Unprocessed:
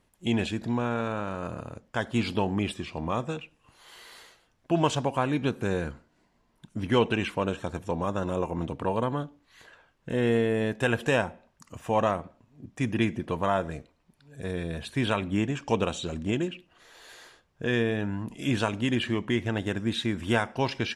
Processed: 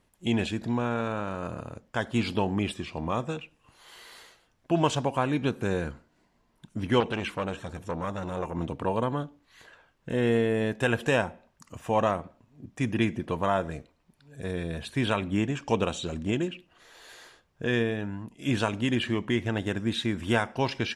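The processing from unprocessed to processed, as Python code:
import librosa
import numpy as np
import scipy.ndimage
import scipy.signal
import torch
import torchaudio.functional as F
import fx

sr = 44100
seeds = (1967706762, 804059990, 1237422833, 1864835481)

y = fx.transformer_sat(x, sr, knee_hz=1200.0, at=(7.0, 8.55))
y = fx.upward_expand(y, sr, threshold_db=-45.0, expansion=1.5, at=(17.79, 18.49))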